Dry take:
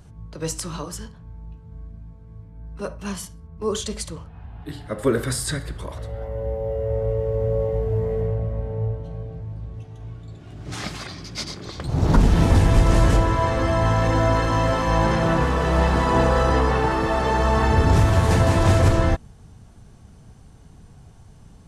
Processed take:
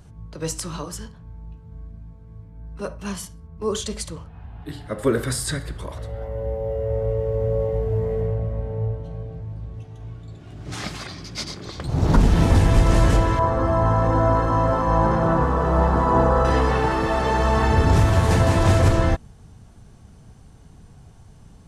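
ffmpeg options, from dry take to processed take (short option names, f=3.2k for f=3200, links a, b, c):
-filter_complex "[0:a]asettb=1/sr,asplit=3[a][b][c];[a]atrim=end=13.394[d];[b]atrim=start=13.39:end=16.45,asetpts=PTS-STARTPTS,afade=t=in:d=0.004:c=qsin,afade=t=out:st=3.056:d=0.004:c=qsin,highshelf=f=1.7k:t=q:w=1.5:g=-10[e];[c]atrim=start=16.446[f];[d][e]acrossfade=d=0.004:c1=hsin:c2=qsin[g];[g][f]acrossfade=d=0.004:c1=qsin:c2=hsin"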